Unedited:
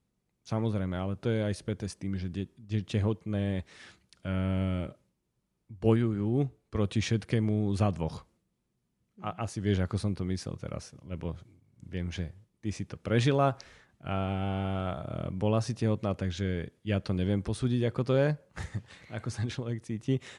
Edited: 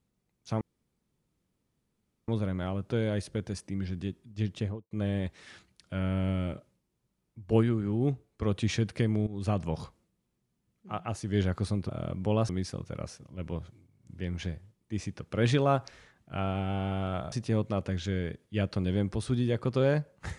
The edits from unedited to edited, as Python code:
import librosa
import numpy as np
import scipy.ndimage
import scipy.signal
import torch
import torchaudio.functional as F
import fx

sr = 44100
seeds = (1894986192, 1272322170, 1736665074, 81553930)

y = fx.studio_fade_out(x, sr, start_s=2.81, length_s=0.43)
y = fx.edit(y, sr, fx.insert_room_tone(at_s=0.61, length_s=1.67),
    fx.fade_in_from(start_s=7.6, length_s=0.45, curve='qsin', floor_db=-16.0),
    fx.move(start_s=15.05, length_s=0.6, to_s=10.22), tone=tone)